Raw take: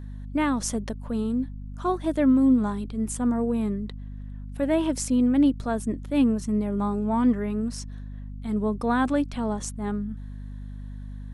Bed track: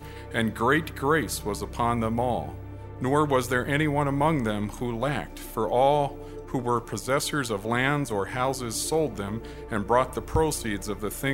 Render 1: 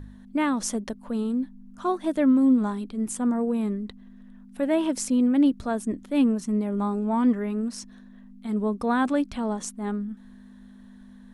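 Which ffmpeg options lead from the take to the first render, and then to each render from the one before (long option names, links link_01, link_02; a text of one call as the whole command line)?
ffmpeg -i in.wav -af "bandreject=frequency=50:width_type=h:width=4,bandreject=frequency=100:width_type=h:width=4,bandreject=frequency=150:width_type=h:width=4" out.wav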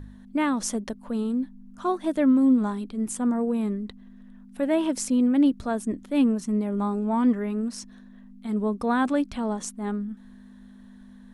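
ffmpeg -i in.wav -af anull out.wav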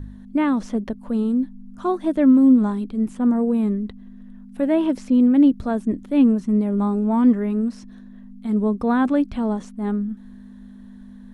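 ffmpeg -i in.wav -filter_complex "[0:a]acrossover=split=3800[link_01][link_02];[link_02]acompressor=threshold=-53dB:ratio=4:attack=1:release=60[link_03];[link_01][link_03]amix=inputs=2:normalize=0,lowshelf=frequency=470:gain=7.5" out.wav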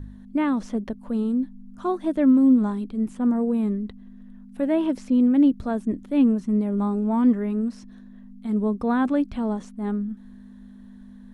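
ffmpeg -i in.wav -af "volume=-3dB" out.wav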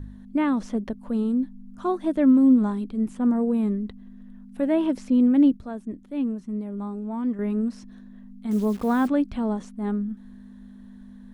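ffmpeg -i in.wav -filter_complex "[0:a]asettb=1/sr,asplit=3[link_01][link_02][link_03];[link_01]atrim=end=8.514[link_04];[link_02]atrim=start=8.51:end=9.08,asetpts=PTS-STARTPTS,afade=type=in:duration=0.004:curve=qsin,afade=type=out:start_time=0.566:duration=0.004:curve=qsin,acrusher=bits=8:dc=4:mix=0:aa=0.000001[link_05];[link_03]atrim=start=9.076[link_06];[link_04][link_05]acrossfade=duration=0.004:curve1=hsin:curve2=qsin[link_07];[link_07][link_06]acrossfade=duration=0.004:curve1=qsin:curve2=hsin,asplit=3[link_08][link_09][link_10];[link_08]atrim=end=5.572[link_11];[link_09]atrim=start=5.568:end=7.392,asetpts=PTS-STARTPTS,volume=-8dB[link_12];[link_10]atrim=start=7.388[link_13];[link_11][link_12]acrossfade=duration=0.004:curve1=hsin:curve2=hsin[link_14];[link_14][link_13]acrossfade=duration=0.004:curve1=hsin:curve2=hsin" out.wav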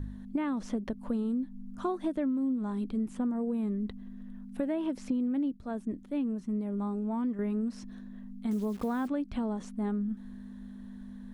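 ffmpeg -i in.wav -af "acompressor=threshold=-28dB:ratio=10" out.wav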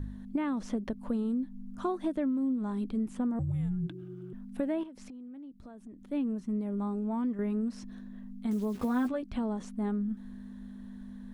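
ffmpeg -i in.wav -filter_complex "[0:a]asettb=1/sr,asplit=3[link_01][link_02][link_03];[link_01]atrim=end=3.394[link_04];[link_02]atrim=start=3.39:end=4.33,asetpts=PTS-STARTPTS,afade=type=in:duration=0.004:curve=qsin,afade=type=out:start_time=0.936:duration=0.004:curve=qsin,afreqshift=-380[link_05];[link_03]atrim=start=4.326[link_06];[link_04][link_05]acrossfade=duration=0.004:curve1=hsin:curve2=qsin[link_07];[link_07][link_06]acrossfade=duration=0.004:curve1=qsin:curve2=hsin,asettb=1/sr,asplit=3[link_08][link_09][link_10];[link_08]atrim=end=4.834[link_11];[link_09]atrim=start=4.83:end=6.03,asetpts=PTS-STARTPTS,afade=type=in:duration=0.004:curve=qsin,afade=type=out:start_time=1.196:duration=0.004:curve=qsin,acompressor=threshold=-44dB:ratio=8:attack=3.2:release=140:knee=1:detection=peak[link_12];[link_10]atrim=start=6.026[link_13];[link_11][link_12]acrossfade=duration=0.004:curve1=hsin:curve2=qsin[link_14];[link_14][link_13]acrossfade=duration=0.004:curve1=qsin:curve2=hsin,asettb=1/sr,asplit=3[link_15][link_16][link_17];[link_15]atrim=end=8.744[link_18];[link_16]atrim=start=8.74:end=9.23,asetpts=PTS-STARTPTS,afade=type=in:duration=0.004:curve=qsin,afade=type=out:start_time=0.486:duration=0.004:curve=qsin,asplit=2[link_19][link_20];[link_20]adelay=12,volume=-4dB[link_21];[link_19][link_21]amix=inputs=2:normalize=0,atrim=end_sample=21609[link_22];[link_17]atrim=start=9.226[link_23];[link_18][link_22]acrossfade=duration=0.004:curve1=hsin:curve2=qsin[link_24];[link_24][link_23]acrossfade=duration=0.004:curve1=qsin:curve2=hsin" out.wav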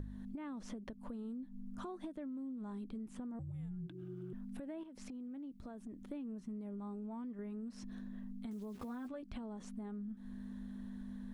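ffmpeg -i in.wav -af "alimiter=level_in=6dB:limit=-24dB:level=0:latency=1:release=448,volume=-6dB,acompressor=threshold=-42dB:ratio=6" out.wav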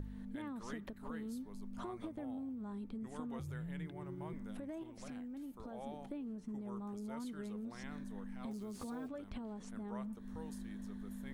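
ffmpeg -i in.wav -i bed.wav -filter_complex "[1:a]volume=-28dB[link_01];[0:a][link_01]amix=inputs=2:normalize=0" out.wav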